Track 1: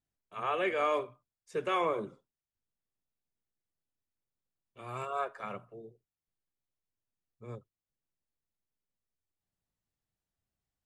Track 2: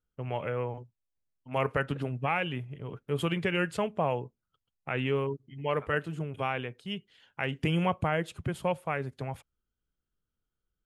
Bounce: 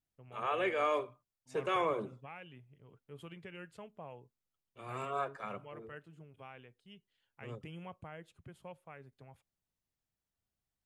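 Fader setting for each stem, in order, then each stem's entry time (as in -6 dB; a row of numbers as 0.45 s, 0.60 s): -2.0 dB, -20.0 dB; 0.00 s, 0.00 s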